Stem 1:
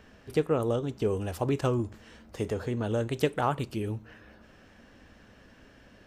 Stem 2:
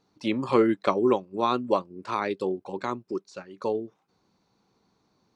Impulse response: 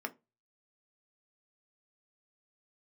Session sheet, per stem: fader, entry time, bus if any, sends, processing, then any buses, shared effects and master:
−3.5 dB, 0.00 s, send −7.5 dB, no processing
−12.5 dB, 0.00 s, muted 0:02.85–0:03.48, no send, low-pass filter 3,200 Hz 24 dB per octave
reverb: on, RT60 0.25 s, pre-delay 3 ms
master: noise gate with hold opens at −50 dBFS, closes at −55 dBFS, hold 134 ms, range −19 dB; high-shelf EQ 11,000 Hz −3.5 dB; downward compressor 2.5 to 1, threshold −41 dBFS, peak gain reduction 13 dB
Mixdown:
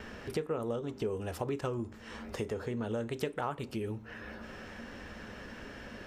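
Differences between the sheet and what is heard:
stem 1 −3.5 dB → +8.0 dB
stem 2 −12.5 dB → −22.5 dB

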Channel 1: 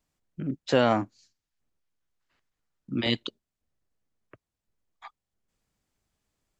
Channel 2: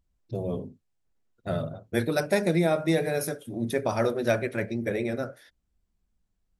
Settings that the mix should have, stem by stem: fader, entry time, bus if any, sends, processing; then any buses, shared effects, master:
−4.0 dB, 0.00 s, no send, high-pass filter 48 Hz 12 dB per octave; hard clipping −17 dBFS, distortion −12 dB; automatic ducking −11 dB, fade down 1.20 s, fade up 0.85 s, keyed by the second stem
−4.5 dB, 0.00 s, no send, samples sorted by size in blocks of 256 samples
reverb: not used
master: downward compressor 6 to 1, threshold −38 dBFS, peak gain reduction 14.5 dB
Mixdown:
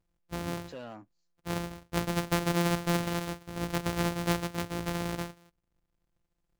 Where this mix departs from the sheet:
stem 1 −4.0 dB → −12.0 dB
master: missing downward compressor 6 to 1, threshold −38 dBFS, peak gain reduction 14.5 dB

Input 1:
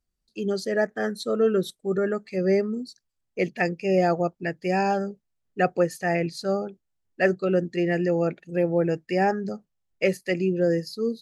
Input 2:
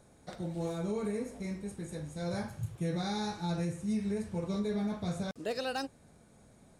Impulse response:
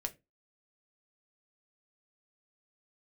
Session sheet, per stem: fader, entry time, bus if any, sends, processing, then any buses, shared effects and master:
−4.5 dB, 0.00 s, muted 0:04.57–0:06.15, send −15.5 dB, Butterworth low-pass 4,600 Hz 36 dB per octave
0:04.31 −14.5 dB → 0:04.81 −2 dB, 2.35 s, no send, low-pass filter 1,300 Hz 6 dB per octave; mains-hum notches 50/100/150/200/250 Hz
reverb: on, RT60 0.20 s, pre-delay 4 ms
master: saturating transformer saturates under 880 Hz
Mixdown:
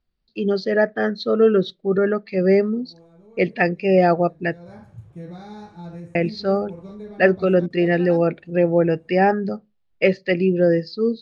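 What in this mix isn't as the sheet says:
stem 1 −4.5 dB → +4.5 dB
master: missing saturating transformer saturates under 880 Hz

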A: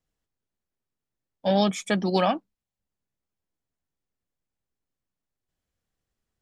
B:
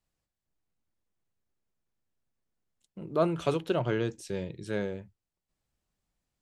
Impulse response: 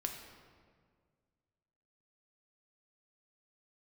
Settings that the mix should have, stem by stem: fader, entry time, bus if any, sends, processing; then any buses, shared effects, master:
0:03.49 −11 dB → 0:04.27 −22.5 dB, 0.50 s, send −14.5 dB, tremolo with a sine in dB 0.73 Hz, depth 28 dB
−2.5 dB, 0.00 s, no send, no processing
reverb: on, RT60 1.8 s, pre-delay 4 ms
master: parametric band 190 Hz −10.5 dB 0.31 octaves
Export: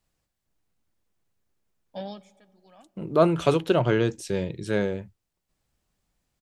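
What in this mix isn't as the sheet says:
stem B −2.5 dB → +7.0 dB
master: missing parametric band 190 Hz −10.5 dB 0.31 octaves

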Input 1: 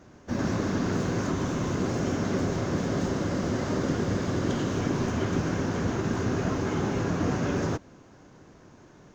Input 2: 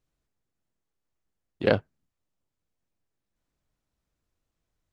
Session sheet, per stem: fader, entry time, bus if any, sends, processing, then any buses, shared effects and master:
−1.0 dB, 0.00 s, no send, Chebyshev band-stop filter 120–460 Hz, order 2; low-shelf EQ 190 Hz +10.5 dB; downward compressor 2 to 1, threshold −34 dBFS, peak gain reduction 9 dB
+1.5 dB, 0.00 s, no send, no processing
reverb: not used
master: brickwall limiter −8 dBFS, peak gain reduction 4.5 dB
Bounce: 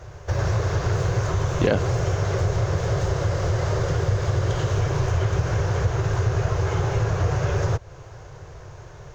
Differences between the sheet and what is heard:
stem 1 −1.0 dB → +10.0 dB
stem 2 +1.5 dB → +9.0 dB

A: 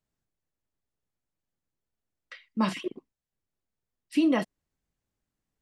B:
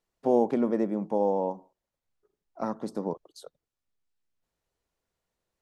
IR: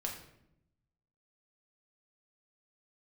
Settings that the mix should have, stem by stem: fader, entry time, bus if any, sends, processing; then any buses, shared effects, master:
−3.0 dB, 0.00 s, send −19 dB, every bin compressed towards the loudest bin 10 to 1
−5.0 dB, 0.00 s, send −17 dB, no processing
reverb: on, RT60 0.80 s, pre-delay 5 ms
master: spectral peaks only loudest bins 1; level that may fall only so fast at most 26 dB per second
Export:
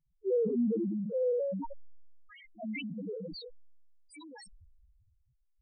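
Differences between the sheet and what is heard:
stem B −5.0 dB → +1.5 dB
reverb return −6.5 dB

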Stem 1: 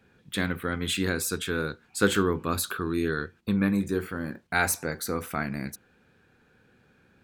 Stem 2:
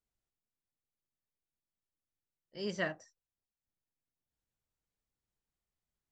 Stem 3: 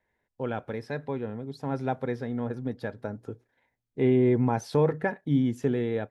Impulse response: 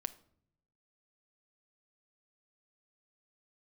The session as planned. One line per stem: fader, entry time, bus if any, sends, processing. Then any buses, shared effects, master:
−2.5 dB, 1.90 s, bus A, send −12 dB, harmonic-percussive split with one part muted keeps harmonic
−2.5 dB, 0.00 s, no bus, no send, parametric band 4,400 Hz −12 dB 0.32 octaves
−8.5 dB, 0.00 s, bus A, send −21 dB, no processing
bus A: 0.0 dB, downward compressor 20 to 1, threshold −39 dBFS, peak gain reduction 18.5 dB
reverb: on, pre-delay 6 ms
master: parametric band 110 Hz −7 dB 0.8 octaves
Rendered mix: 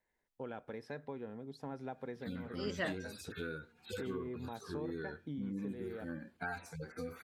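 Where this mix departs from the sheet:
stem 1: send −12 dB → −19 dB
stem 2: missing parametric band 4,400 Hz −12 dB 0.32 octaves

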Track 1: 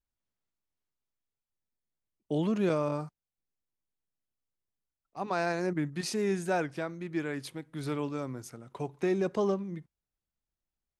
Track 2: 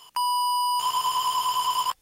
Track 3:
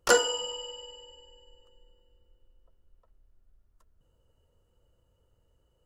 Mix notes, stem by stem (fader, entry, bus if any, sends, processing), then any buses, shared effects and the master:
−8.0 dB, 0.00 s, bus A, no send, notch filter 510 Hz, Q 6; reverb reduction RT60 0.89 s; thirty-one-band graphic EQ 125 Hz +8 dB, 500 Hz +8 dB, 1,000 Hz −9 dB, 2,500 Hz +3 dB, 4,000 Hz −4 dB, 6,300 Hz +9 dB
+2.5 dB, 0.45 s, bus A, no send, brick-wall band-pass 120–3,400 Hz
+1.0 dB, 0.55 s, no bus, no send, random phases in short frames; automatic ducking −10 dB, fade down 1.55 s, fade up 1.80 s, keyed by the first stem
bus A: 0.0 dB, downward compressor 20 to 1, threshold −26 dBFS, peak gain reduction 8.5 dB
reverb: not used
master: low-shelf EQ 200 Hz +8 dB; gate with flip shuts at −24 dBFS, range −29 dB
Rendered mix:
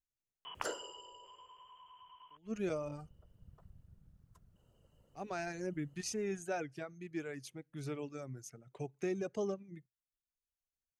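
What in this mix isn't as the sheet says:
stem 3 +1.0 dB → +10.5 dB
master: missing low-shelf EQ 200 Hz +8 dB

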